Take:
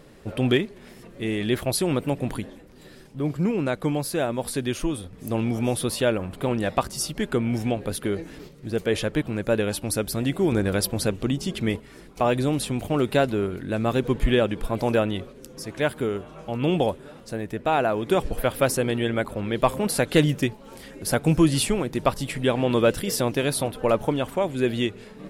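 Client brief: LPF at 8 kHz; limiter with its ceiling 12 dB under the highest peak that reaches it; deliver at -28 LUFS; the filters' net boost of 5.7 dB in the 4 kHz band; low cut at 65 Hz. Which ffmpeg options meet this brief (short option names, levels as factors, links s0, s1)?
-af "highpass=65,lowpass=8000,equalizer=f=4000:t=o:g=7.5,volume=0.944,alimiter=limit=0.15:level=0:latency=1"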